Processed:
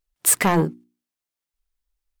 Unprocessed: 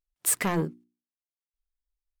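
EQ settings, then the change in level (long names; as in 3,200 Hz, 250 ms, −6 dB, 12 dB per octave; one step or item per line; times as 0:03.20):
dynamic equaliser 830 Hz, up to +5 dB, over −47 dBFS, Q 3
+7.5 dB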